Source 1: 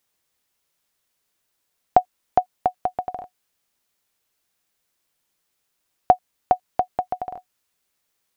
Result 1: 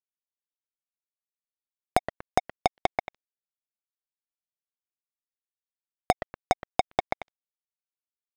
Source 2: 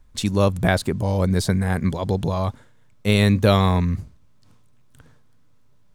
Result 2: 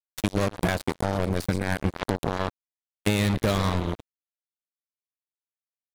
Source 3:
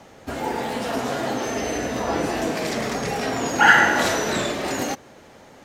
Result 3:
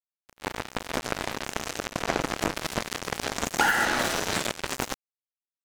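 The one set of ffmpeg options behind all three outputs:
ffmpeg -i in.wav -filter_complex "[0:a]asplit=2[link_01][link_02];[link_02]asplit=7[link_03][link_04][link_05][link_06][link_07][link_08][link_09];[link_03]adelay=119,afreqshift=-90,volume=-13dB[link_10];[link_04]adelay=238,afreqshift=-180,volume=-17.4dB[link_11];[link_05]adelay=357,afreqshift=-270,volume=-21.9dB[link_12];[link_06]adelay=476,afreqshift=-360,volume=-26.3dB[link_13];[link_07]adelay=595,afreqshift=-450,volume=-30.7dB[link_14];[link_08]adelay=714,afreqshift=-540,volume=-35.2dB[link_15];[link_09]adelay=833,afreqshift=-630,volume=-39.6dB[link_16];[link_10][link_11][link_12][link_13][link_14][link_15][link_16]amix=inputs=7:normalize=0[link_17];[link_01][link_17]amix=inputs=2:normalize=0,acrusher=bits=2:mix=0:aa=0.5,acompressor=threshold=-23dB:ratio=16,volume=3.5dB" out.wav

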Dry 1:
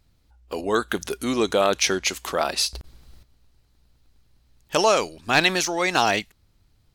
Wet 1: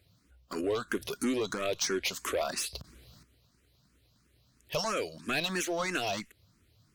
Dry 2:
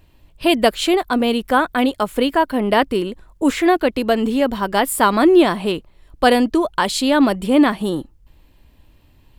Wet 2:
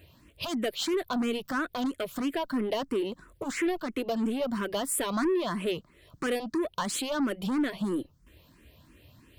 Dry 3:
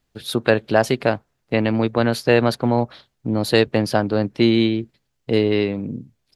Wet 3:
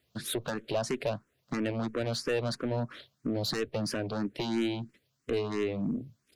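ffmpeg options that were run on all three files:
ffmpeg -i in.wav -filter_complex "[0:a]highpass=92,equalizer=frequency=830:width=7:gain=-14.5,acompressor=threshold=-28dB:ratio=2.5,asoftclip=type=tanh:threshold=-26.5dB,asplit=2[link_01][link_02];[link_02]afreqshift=3[link_03];[link_01][link_03]amix=inputs=2:normalize=1,volume=4dB" out.wav

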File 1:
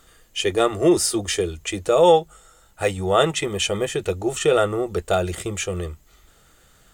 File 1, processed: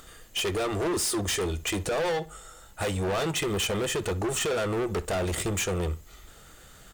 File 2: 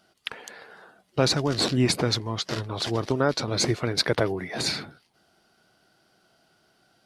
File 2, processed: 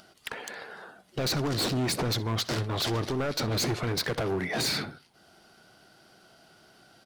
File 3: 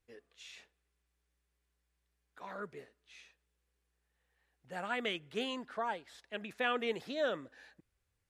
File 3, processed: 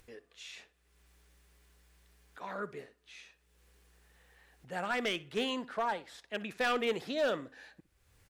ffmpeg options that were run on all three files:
ffmpeg -i in.wav -filter_complex "[0:a]asplit=2[link_01][link_02];[link_02]alimiter=limit=-15dB:level=0:latency=1,volume=-1dB[link_03];[link_01][link_03]amix=inputs=2:normalize=0,acompressor=threshold=-19dB:ratio=2,volume=24dB,asoftclip=hard,volume=-24dB,acompressor=mode=upward:threshold=-50dB:ratio=2.5,asplit=2[link_04][link_05];[link_05]adelay=62,lowpass=frequency=4900:poles=1,volume=-18dB,asplit=2[link_06][link_07];[link_07]adelay=62,lowpass=frequency=4900:poles=1,volume=0.28[link_08];[link_04][link_06][link_08]amix=inputs=3:normalize=0,volume=-1.5dB" out.wav

